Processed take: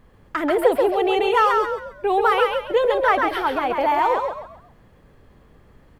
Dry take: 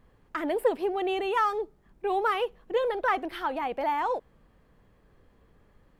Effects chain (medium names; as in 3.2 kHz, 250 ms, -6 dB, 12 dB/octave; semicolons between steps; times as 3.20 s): frequency-shifting echo 135 ms, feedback 33%, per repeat +51 Hz, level -4 dB; trim +7.5 dB